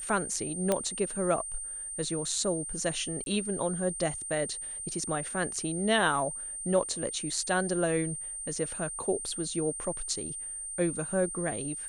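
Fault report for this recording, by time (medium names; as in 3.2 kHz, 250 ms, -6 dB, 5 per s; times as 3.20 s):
whine 8.8 kHz -36 dBFS
0.72 s: pop -12 dBFS
3.24–3.26 s: dropout 22 ms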